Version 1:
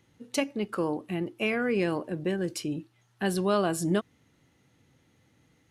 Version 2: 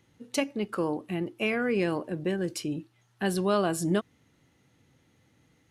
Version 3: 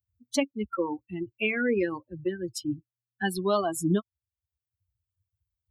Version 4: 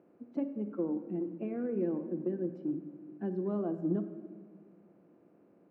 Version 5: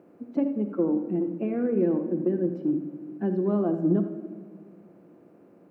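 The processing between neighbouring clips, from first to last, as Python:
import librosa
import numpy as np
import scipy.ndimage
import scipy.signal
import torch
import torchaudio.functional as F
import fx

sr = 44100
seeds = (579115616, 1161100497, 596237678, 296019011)

y1 = x
y2 = fx.bin_expand(y1, sr, power=3.0)
y2 = fx.peak_eq(y2, sr, hz=62.0, db=9.0, octaves=1.2)
y2 = fx.band_squash(y2, sr, depth_pct=40)
y2 = y2 * librosa.db_to_amplitude(6.0)
y3 = fx.bin_compress(y2, sr, power=0.4)
y3 = fx.ladder_bandpass(y3, sr, hz=310.0, resonance_pct=40)
y3 = fx.room_shoebox(y3, sr, seeds[0], volume_m3=1900.0, walls='mixed', distance_m=0.8)
y4 = y3 + 10.0 ** (-12.5 / 20.0) * np.pad(y3, (int(79 * sr / 1000.0), 0))[:len(y3)]
y4 = y4 * librosa.db_to_amplitude(8.5)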